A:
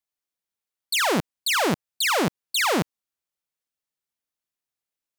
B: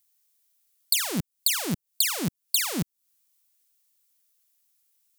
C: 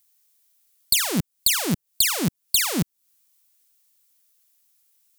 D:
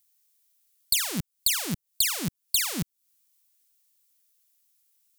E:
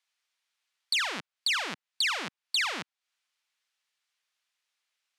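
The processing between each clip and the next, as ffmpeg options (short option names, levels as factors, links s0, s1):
-filter_complex "[0:a]acrossover=split=260[s0][s1];[s1]acompressor=threshold=0.0141:ratio=8[s2];[s0][s2]amix=inputs=2:normalize=0,crystalizer=i=6.5:c=0"
-af "acontrast=51,volume=0.891"
-af "equalizer=f=460:w=0.48:g=-6.5,volume=0.631"
-af "highpass=710,lowpass=2700,volume=2.24"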